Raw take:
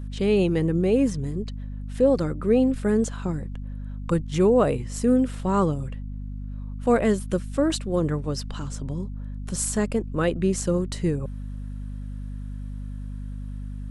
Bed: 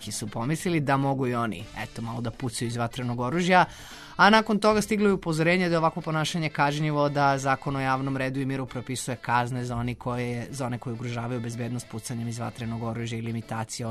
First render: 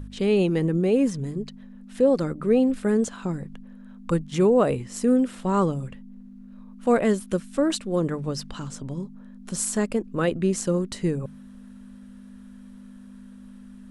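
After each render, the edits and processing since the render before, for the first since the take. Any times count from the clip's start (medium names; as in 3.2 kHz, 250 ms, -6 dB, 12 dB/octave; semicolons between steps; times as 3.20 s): de-hum 50 Hz, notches 3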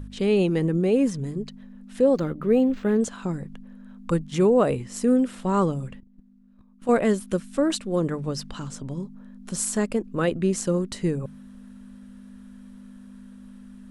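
2.17–3.01 s: decimation joined by straight lines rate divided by 4×; 6.00–6.89 s: level held to a coarse grid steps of 14 dB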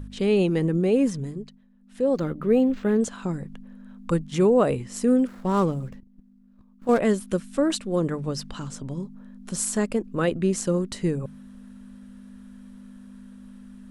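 1.16–2.26 s: dip -14.5 dB, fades 0.46 s linear; 5.27–6.99 s: median filter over 15 samples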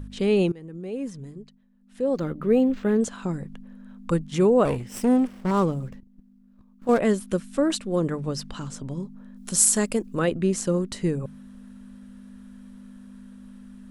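0.52–2.51 s: fade in, from -22 dB; 4.65–5.51 s: comb filter that takes the minimum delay 0.36 ms; 9.36–10.19 s: treble shelf 4 kHz +11.5 dB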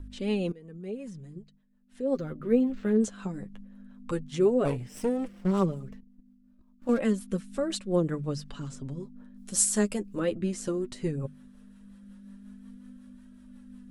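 rotary cabinet horn 5.5 Hz; flange 0.15 Hz, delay 3 ms, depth 7.1 ms, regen +20%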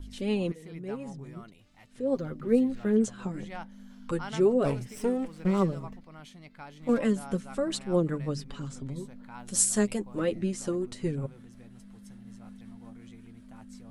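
add bed -22.5 dB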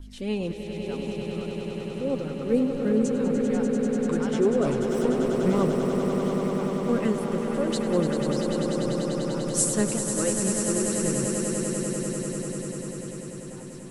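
echo with a slow build-up 98 ms, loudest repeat 8, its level -8 dB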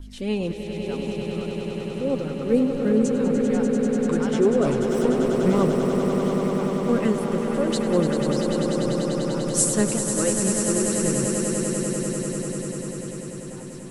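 trim +3 dB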